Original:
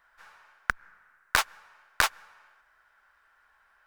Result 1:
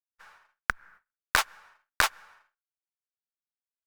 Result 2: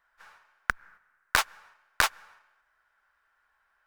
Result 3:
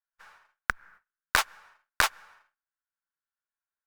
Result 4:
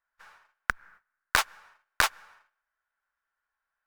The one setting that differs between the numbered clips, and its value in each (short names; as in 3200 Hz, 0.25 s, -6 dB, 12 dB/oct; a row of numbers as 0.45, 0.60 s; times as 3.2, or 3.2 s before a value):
gate, range: -51, -7, -35, -21 dB